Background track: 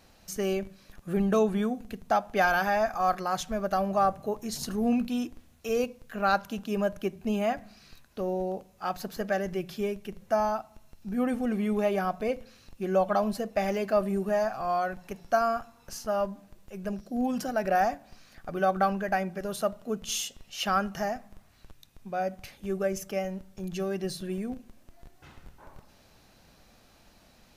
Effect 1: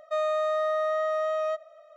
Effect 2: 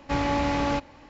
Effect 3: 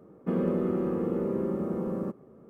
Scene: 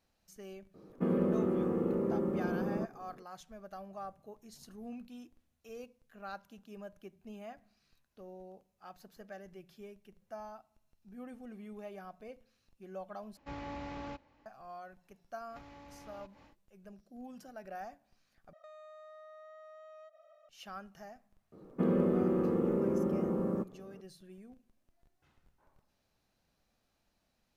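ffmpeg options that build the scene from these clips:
-filter_complex "[3:a]asplit=2[a][b];[2:a]asplit=2[c][d];[0:a]volume=-19.5dB[e];[c]highshelf=f=5.4k:g=-8[f];[d]acompressor=threshold=-41dB:ratio=8:attack=4.9:release=196:knee=1:detection=peak[g];[1:a]acompressor=threshold=-42dB:ratio=6:attack=3.2:release=140:knee=1:detection=peak[h];[e]asplit=3[i][j][k];[i]atrim=end=13.374[l];[f]atrim=end=1.09,asetpts=PTS-STARTPTS,volume=-17.5dB[m];[j]atrim=start=14.456:end=18.534[n];[h]atrim=end=1.96,asetpts=PTS-STARTPTS,volume=-9.5dB[o];[k]atrim=start=20.486[p];[a]atrim=end=2.49,asetpts=PTS-STARTPTS,volume=-3dB,afade=t=in:d=0.004:c=hsin,afade=t=out:st=2.486:d=0.004:c=hsin,adelay=740[q];[g]atrim=end=1.09,asetpts=PTS-STARTPTS,volume=-10dB,afade=t=in:d=0.1,afade=t=out:st=0.99:d=0.1,adelay=15470[r];[b]atrim=end=2.49,asetpts=PTS-STARTPTS,volume=-1.5dB,afade=t=in:d=0.004:c=hsin,afade=t=out:st=2.486:d=0.004:c=hsin,adelay=21520[s];[l][m]acrossfade=d=0.004:c1=hsin:c2=hsin[t];[t][n]acrossfade=d=0.004:c1=hsin:c2=hsin[u];[u][o]acrossfade=d=0.004:c1=hsin:c2=hsin[v];[v][p]acrossfade=d=0.004:c1=hsin:c2=hsin[w];[w][q][r][s]amix=inputs=4:normalize=0"

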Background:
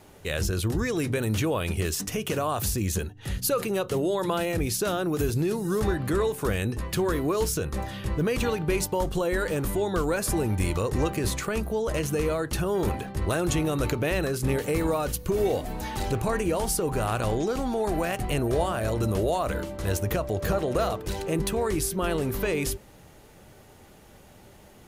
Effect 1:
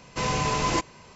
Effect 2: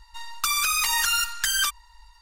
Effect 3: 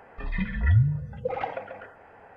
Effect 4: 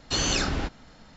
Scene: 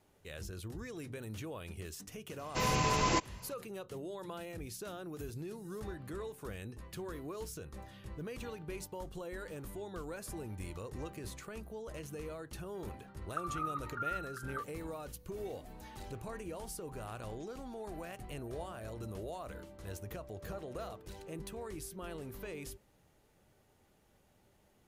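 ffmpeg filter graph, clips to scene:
-filter_complex "[0:a]volume=-17.5dB[a];[2:a]asuperpass=centerf=1300:order=4:qfactor=5.4[b];[1:a]atrim=end=1.15,asetpts=PTS-STARTPTS,volume=-5dB,afade=t=in:d=0.004:c=hsin,afade=t=out:st=1.146:d=0.004:c=hsin,adelay=2390[c];[b]atrim=end=2.21,asetpts=PTS-STARTPTS,volume=-6.5dB,afade=t=in:d=0.004:c=hsin,afade=t=out:st=2.206:d=0.004:c=hsin,adelay=12930[d];[a][c][d]amix=inputs=3:normalize=0"

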